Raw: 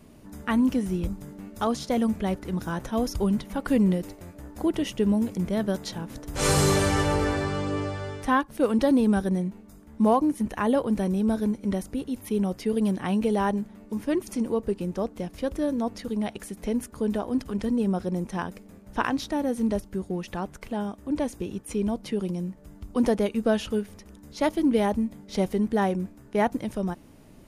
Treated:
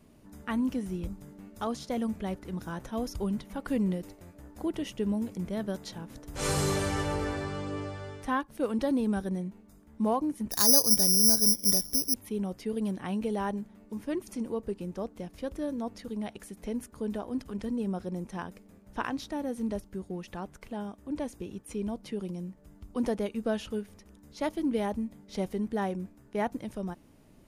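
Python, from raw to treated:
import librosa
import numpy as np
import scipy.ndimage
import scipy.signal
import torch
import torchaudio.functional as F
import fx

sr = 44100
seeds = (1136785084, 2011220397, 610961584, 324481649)

y = fx.resample_bad(x, sr, factor=8, down='filtered', up='zero_stuff', at=(10.51, 12.14))
y = y * 10.0 ** (-7.0 / 20.0)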